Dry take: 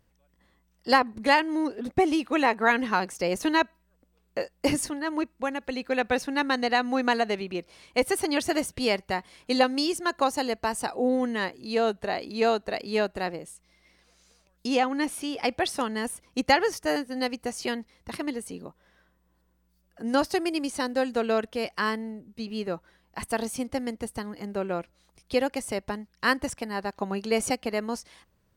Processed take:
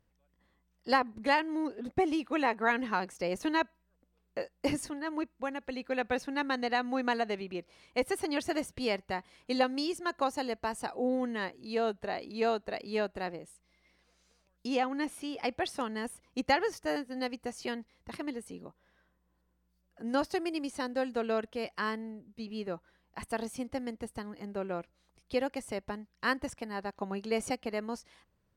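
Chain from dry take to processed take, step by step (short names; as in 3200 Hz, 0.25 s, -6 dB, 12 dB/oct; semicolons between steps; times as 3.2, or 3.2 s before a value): high shelf 5200 Hz -6 dB; gain -6 dB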